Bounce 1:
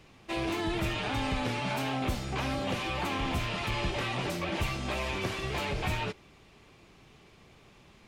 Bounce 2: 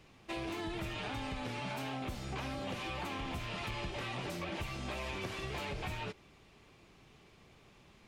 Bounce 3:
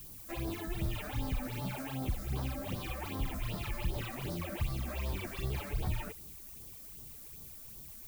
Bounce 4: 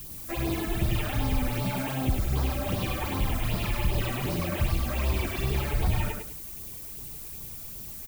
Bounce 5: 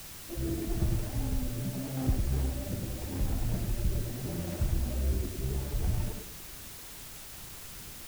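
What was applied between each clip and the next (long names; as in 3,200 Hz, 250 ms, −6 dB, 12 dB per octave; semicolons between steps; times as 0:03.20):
downward compressor, threshold −32 dBFS, peak gain reduction 7 dB; level −4 dB
low-shelf EQ 130 Hz +11.5 dB; all-pass phaser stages 8, 2.6 Hz, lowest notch 110–2,600 Hz; background noise violet −50 dBFS
repeating echo 103 ms, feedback 24%, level −3.5 dB; level +7.5 dB
running median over 41 samples; rotating-speaker cabinet horn 0.8 Hz; background noise white −44 dBFS; level −2 dB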